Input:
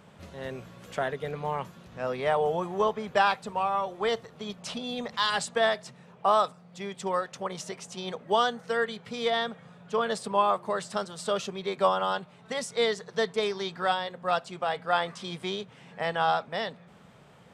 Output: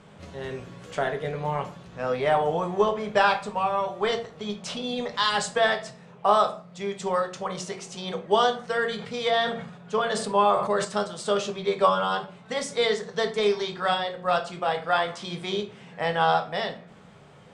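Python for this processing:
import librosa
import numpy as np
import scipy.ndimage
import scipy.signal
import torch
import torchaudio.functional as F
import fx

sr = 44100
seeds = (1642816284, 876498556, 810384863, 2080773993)

y = scipy.signal.sosfilt(scipy.signal.butter(4, 9700.0, 'lowpass', fs=sr, output='sos'), x)
y = fx.room_shoebox(y, sr, seeds[0], volume_m3=35.0, walls='mixed', distance_m=0.34)
y = fx.sustainer(y, sr, db_per_s=65.0, at=(8.79, 10.85))
y = y * 10.0 ** (2.0 / 20.0)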